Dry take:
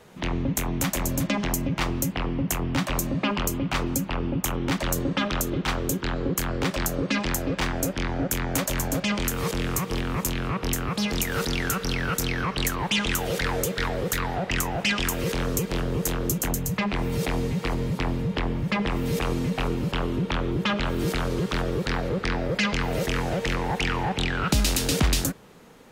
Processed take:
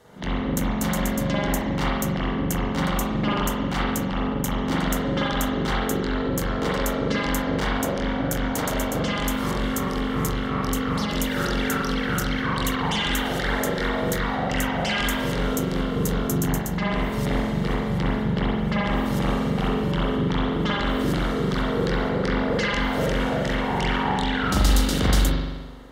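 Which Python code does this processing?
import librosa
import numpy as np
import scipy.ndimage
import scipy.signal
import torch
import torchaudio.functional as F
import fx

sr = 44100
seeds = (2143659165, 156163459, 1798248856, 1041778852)

y = fx.notch(x, sr, hz=2500.0, q=5.1)
y = fx.rev_spring(y, sr, rt60_s=1.2, pass_ms=(42,), chirp_ms=30, drr_db=-6.0)
y = fx.cheby_harmonics(y, sr, harmonics=(4, 6), levels_db=(-27, -24), full_scale_db=-4.0)
y = F.gain(torch.from_numpy(y), -3.5).numpy()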